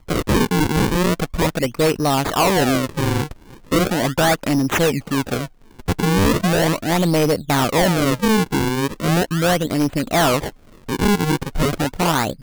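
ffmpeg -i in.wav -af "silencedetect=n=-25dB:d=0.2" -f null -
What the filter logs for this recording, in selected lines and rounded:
silence_start: 3.31
silence_end: 3.71 | silence_duration: 0.40
silence_start: 5.46
silence_end: 5.80 | silence_duration: 0.35
silence_start: 10.49
silence_end: 10.89 | silence_duration: 0.40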